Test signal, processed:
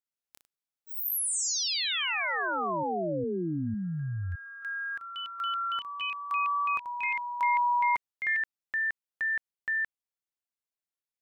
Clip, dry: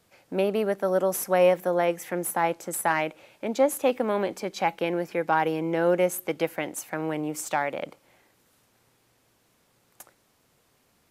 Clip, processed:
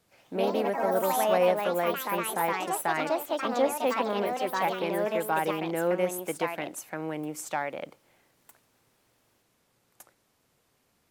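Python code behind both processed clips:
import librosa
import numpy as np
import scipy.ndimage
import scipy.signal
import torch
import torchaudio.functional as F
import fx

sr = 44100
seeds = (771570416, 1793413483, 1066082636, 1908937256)

y = fx.echo_pitch(x, sr, ms=81, semitones=3, count=3, db_per_echo=-3.0)
y = F.gain(torch.from_numpy(y), -4.5).numpy()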